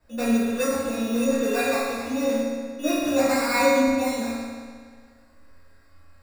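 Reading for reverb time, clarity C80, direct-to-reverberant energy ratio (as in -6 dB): 1.8 s, -0.5 dB, -11.5 dB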